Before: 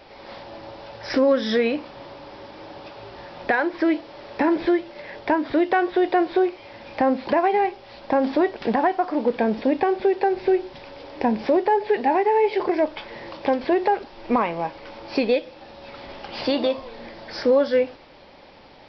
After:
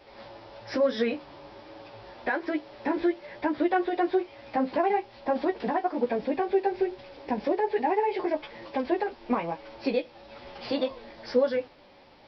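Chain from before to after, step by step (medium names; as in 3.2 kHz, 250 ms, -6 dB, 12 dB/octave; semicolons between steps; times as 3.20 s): chorus 0.74 Hz, delay 16 ms, depth 4.6 ms; time stretch by phase-locked vocoder 0.65×; trim -2.5 dB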